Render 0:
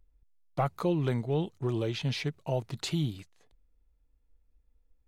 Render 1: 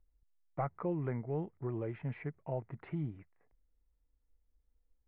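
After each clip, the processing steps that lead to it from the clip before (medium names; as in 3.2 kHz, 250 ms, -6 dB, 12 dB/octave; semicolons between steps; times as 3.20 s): elliptic low-pass 2.1 kHz, stop band 70 dB; trim -6.5 dB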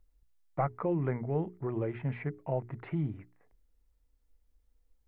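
hum notches 60/120/180/240/300/360/420 Hz; trim +5.5 dB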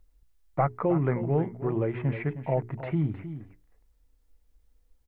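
delay 313 ms -11.5 dB; trim +5.5 dB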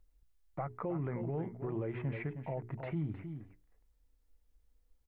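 peak limiter -23 dBFS, peak gain reduction 9.5 dB; trim -6 dB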